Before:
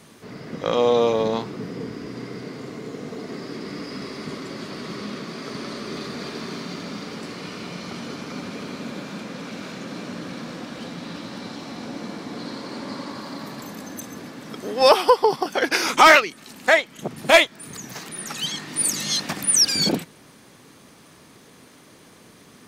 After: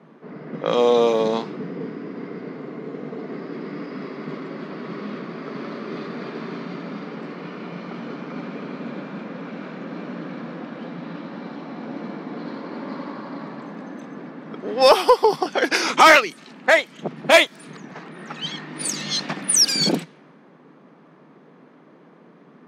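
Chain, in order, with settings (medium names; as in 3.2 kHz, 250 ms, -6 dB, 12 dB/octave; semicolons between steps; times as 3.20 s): elliptic high-pass 150 Hz; level-controlled noise filter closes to 1.3 kHz, open at -16 dBFS; in parallel at -8 dB: hard clipper -10 dBFS, distortion -14 dB; on the sum: trim -1 dB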